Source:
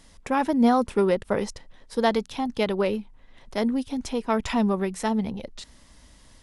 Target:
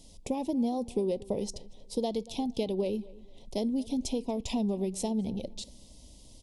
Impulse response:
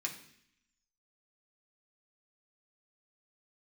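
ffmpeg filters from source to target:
-filter_complex "[0:a]acompressor=threshold=-27dB:ratio=5,asuperstop=centerf=1500:order=4:qfactor=0.59,asplit=2[a][b];[b]adelay=233,lowpass=f=2.8k:p=1,volume=-20.5dB,asplit=2[c][d];[d]adelay=233,lowpass=f=2.8k:p=1,volume=0.29[e];[a][c][e]amix=inputs=3:normalize=0,asplit=2[f][g];[1:a]atrim=start_sample=2205,atrim=end_sample=3969[h];[g][h]afir=irnorm=-1:irlink=0,volume=-16dB[i];[f][i]amix=inputs=2:normalize=0"

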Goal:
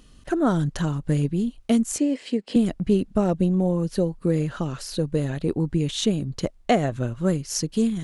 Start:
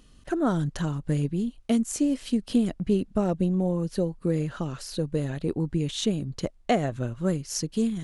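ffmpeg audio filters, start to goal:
-filter_complex "[0:a]asettb=1/sr,asplit=3[a][b][c];[a]atrim=end=1.984[d];[b]atrim=start=1.98:end=2.56,asetpts=PTS-STARTPTS,afade=t=in:d=0.004:c=qsin,afade=t=out:st=0.576:d=0.004:c=qsin,highpass=270,equalizer=f=460:t=q:w=4:g=6,equalizer=f=1.3k:t=q:w=4:g=-7,equalizer=f=2k:t=q:w=4:g=5,equalizer=f=3.6k:t=q:w=4:g=-5,equalizer=f=6k:t=q:w=4:g=-10,lowpass=f=7.3k:w=0.5412,lowpass=f=7.3k:w=1.3066[e];[c]atrim=start=2.556[f];[d][e]acrossfade=d=0.004:c1=hsin:c2=qsin[g];[g][f]acrossfade=d=0.004:c1=qsin:c2=hsin,volume=3.5dB"

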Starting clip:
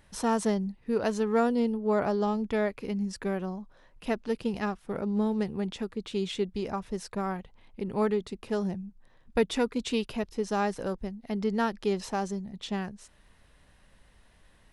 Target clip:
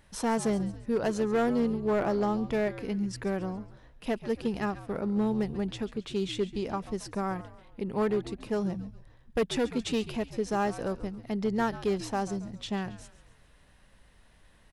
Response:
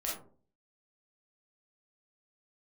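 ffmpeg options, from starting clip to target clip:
-filter_complex "[0:a]asplit=5[a][b][c][d][e];[b]adelay=137,afreqshift=-80,volume=-15.5dB[f];[c]adelay=274,afreqshift=-160,volume=-22.2dB[g];[d]adelay=411,afreqshift=-240,volume=-29dB[h];[e]adelay=548,afreqshift=-320,volume=-35.7dB[i];[a][f][g][h][i]amix=inputs=5:normalize=0,asoftclip=type=hard:threshold=-21dB"

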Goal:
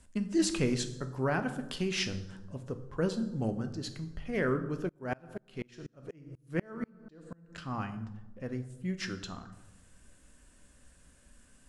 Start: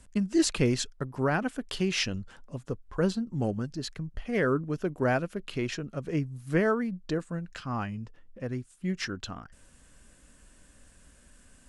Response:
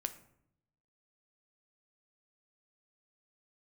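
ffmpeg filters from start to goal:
-filter_complex "[1:a]atrim=start_sample=2205,asetrate=27783,aresample=44100[a];[0:a][a]afir=irnorm=-1:irlink=0,asettb=1/sr,asplit=3[b][c][d];[b]atrim=end=4.894[e];[c]atrim=start=4.89:end=7.58,asetpts=PTS-STARTPTS,afade=t=in:d=0.004:c=qsin,afade=t=out:st=2.686:d=0.004:c=qsin,aeval=exprs='val(0)*pow(10,-32*if(lt(mod(-4.1*n/s,1),2*abs(-4.1)/1000),1-mod(-4.1*n/s,1)/(2*abs(-4.1)/1000),(mod(-4.1*n/s,1)-2*abs(-4.1)/1000)/(1-2*abs(-4.1)/1000))/20)':c=same[f];[d]atrim=start=7.576[g];[e][f]acrossfade=d=0.004:c1=hsin:c2=qsin[h];[h][g]acrossfade=d=0.004:c1=qsin:c2=hsin,volume=-5.5dB"

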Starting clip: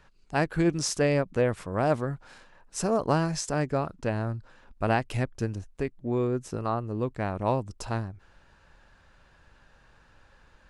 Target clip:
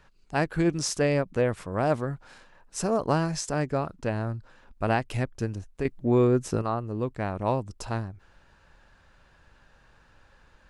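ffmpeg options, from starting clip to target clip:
-filter_complex "[0:a]asettb=1/sr,asplit=3[a][b][c];[a]atrim=end=5.854[d];[b]atrim=start=5.85:end=6.62,asetpts=PTS-STARTPTS,afade=t=in:d=0.004:c=qsin,afade=t=out:st=0.766:d=0.004:c=qsin,acontrast=57[e];[c]atrim=start=6.616[f];[d][e]acrossfade=d=0.004:c1=hsin:c2=qsin[g];[g][f]acrossfade=d=0.004:c1=qsin:c2=hsin"

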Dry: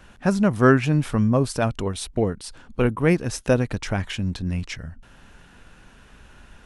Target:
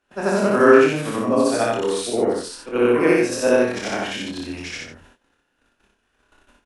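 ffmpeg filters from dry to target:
-filter_complex "[0:a]afftfilt=real='re':imag='-im':win_size=8192:overlap=0.75,agate=range=-23dB:threshold=-48dB:ratio=16:detection=peak,acrossover=split=140|830|2700[a][b][c][d];[a]acompressor=threshold=-47dB:ratio=6[e];[e][b][c][d]amix=inputs=4:normalize=0,lowshelf=f=220:t=q:w=1.5:g=-10,asplit=2[f][g];[g]adelay=25,volume=-4dB[h];[f][h]amix=inputs=2:normalize=0,aecho=1:1:33|58:0.282|0.596,volume=5.5dB"

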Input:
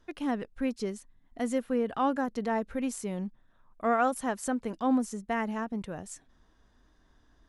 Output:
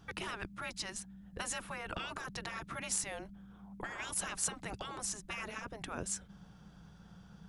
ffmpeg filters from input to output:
-af "afftfilt=real='re*lt(hypot(re,im),0.0398)':imag='im*lt(hypot(re,im),0.0398)':win_size=1024:overlap=0.75,afreqshift=-210,aeval=exprs='val(0)+0.000398*(sin(2*PI*60*n/s)+sin(2*PI*2*60*n/s)/2+sin(2*PI*3*60*n/s)/3+sin(2*PI*4*60*n/s)/4+sin(2*PI*5*60*n/s)/5)':c=same,volume=6.5dB"

